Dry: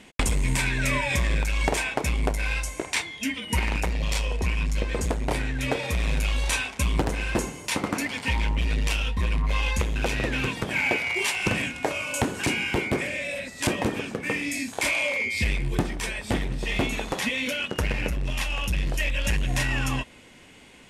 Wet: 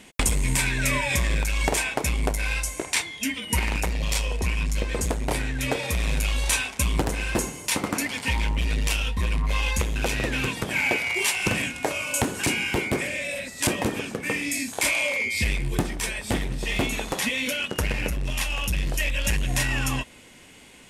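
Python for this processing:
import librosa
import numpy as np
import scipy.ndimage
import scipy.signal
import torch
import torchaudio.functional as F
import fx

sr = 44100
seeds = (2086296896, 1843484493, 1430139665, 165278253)

y = fx.high_shelf(x, sr, hz=7100.0, db=10.0)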